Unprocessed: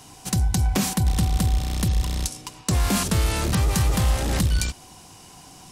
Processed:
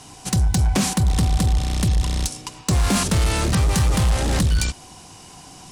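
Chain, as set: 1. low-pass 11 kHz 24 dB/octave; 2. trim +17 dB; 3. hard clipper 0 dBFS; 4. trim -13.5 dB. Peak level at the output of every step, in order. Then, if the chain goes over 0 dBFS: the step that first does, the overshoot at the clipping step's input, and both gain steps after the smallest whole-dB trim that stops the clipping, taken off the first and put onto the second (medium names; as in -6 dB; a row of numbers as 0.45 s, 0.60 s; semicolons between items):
-10.5 dBFS, +6.5 dBFS, 0.0 dBFS, -13.5 dBFS; step 2, 6.5 dB; step 2 +10 dB, step 4 -6.5 dB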